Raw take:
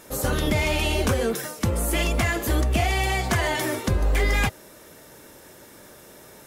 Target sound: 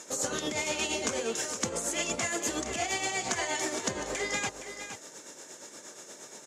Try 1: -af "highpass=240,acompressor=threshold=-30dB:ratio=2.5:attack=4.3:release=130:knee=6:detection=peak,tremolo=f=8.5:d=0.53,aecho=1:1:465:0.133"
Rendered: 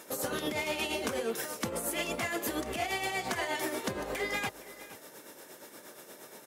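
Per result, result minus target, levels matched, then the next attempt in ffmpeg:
8,000 Hz band −7.0 dB; echo-to-direct −7.5 dB
-af "highpass=240,acompressor=threshold=-30dB:ratio=2.5:attack=4.3:release=130:knee=6:detection=peak,lowpass=frequency=6900:width_type=q:width=5.1,tremolo=f=8.5:d=0.53,aecho=1:1:465:0.133"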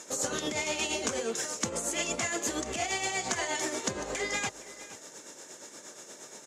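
echo-to-direct −7.5 dB
-af "highpass=240,acompressor=threshold=-30dB:ratio=2.5:attack=4.3:release=130:knee=6:detection=peak,lowpass=frequency=6900:width_type=q:width=5.1,tremolo=f=8.5:d=0.53,aecho=1:1:465:0.316"

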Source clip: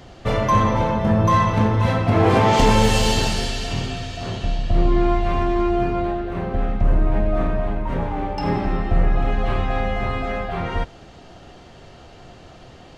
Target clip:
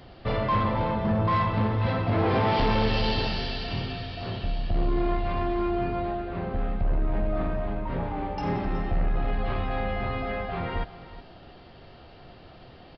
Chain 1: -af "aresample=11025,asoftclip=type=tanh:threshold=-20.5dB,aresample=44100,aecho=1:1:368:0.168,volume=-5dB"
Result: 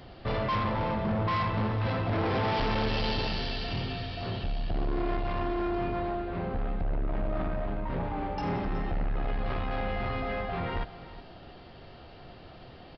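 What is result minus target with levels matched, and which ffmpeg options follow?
soft clipping: distortion +7 dB
-af "aresample=11025,asoftclip=type=tanh:threshold=-12.5dB,aresample=44100,aecho=1:1:368:0.168,volume=-5dB"

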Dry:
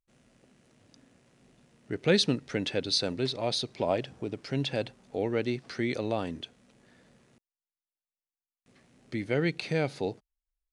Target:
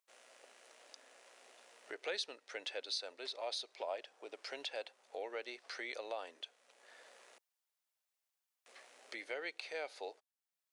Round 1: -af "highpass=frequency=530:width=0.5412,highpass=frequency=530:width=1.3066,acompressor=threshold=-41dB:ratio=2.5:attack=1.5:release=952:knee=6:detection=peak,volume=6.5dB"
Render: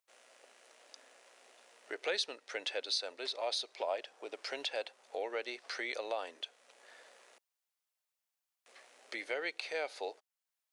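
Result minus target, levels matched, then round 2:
downward compressor: peak gain reduction −5 dB
-af "highpass=frequency=530:width=0.5412,highpass=frequency=530:width=1.3066,acompressor=threshold=-49.5dB:ratio=2.5:attack=1.5:release=952:knee=6:detection=peak,volume=6.5dB"

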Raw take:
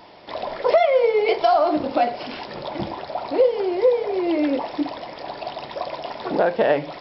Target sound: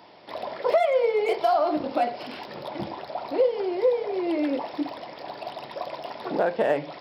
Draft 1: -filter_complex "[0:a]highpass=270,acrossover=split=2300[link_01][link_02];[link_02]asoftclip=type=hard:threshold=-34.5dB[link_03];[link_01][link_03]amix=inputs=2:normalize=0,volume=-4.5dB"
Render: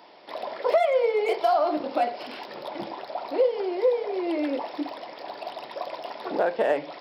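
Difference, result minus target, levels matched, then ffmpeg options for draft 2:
125 Hz band −8.5 dB
-filter_complex "[0:a]highpass=97,acrossover=split=2300[link_01][link_02];[link_02]asoftclip=type=hard:threshold=-34.5dB[link_03];[link_01][link_03]amix=inputs=2:normalize=0,volume=-4.5dB"

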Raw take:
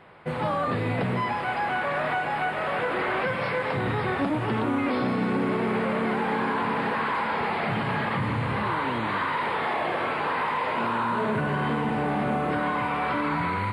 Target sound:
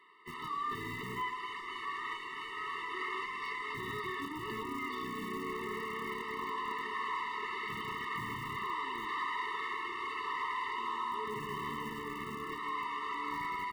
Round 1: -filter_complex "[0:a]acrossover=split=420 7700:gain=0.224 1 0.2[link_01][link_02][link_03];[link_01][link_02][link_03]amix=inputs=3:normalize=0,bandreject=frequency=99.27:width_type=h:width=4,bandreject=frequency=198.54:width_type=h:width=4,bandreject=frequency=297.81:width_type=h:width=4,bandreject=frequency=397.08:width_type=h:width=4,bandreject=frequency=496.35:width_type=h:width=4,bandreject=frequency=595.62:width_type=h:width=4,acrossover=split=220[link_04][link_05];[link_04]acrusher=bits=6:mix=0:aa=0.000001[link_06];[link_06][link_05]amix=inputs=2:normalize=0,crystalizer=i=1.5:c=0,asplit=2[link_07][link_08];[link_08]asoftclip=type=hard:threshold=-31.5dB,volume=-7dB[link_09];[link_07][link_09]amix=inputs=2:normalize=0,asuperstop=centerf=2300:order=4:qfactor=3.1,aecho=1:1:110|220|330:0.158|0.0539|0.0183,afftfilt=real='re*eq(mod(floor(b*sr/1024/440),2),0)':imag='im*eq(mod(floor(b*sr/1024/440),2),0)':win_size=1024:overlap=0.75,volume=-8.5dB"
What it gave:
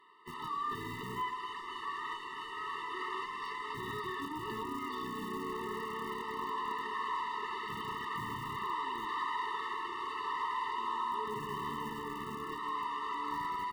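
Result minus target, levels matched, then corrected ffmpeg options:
2,000 Hz band −3.5 dB
-filter_complex "[0:a]acrossover=split=420 7700:gain=0.224 1 0.2[link_01][link_02][link_03];[link_01][link_02][link_03]amix=inputs=3:normalize=0,bandreject=frequency=99.27:width_type=h:width=4,bandreject=frequency=198.54:width_type=h:width=4,bandreject=frequency=297.81:width_type=h:width=4,bandreject=frequency=397.08:width_type=h:width=4,bandreject=frequency=496.35:width_type=h:width=4,bandreject=frequency=595.62:width_type=h:width=4,acrossover=split=220[link_04][link_05];[link_04]acrusher=bits=6:mix=0:aa=0.000001[link_06];[link_06][link_05]amix=inputs=2:normalize=0,crystalizer=i=1.5:c=0,asplit=2[link_07][link_08];[link_08]asoftclip=type=hard:threshold=-31.5dB,volume=-7dB[link_09];[link_07][link_09]amix=inputs=2:normalize=0,asuperstop=centerf=810:order=4:qfactor=3.1,aecho=1:1:110|220|330:0.158|0.0539|0.0183,afftfilt=real='re*eq(mod(floor(b*sr/1024/440),2),0)':imag='im*eq(mod(floor(b*sr/1024/440),2),0)':win_size=1024:overlap=0.75,volume=-8.5dB"

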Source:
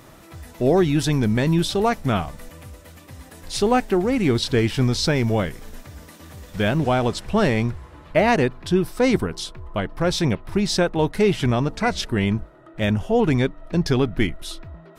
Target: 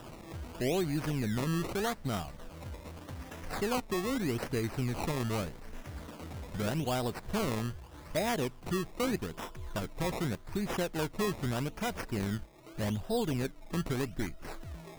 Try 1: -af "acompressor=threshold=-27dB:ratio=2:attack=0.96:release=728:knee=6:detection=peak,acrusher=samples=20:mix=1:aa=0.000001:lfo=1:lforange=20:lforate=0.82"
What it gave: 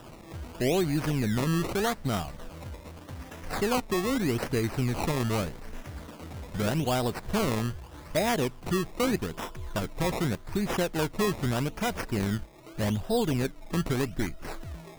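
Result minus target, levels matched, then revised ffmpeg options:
downward compressor: peak gain reduction −5 dB
-af "acompressor=threshold=-37dB:ratio=2:attack=0.96:release=728:knee=6:detection=peak,acrusher=samples=20:mix=1:aa=0.000001:lfo=1:lforange=20:lforate=0.82"

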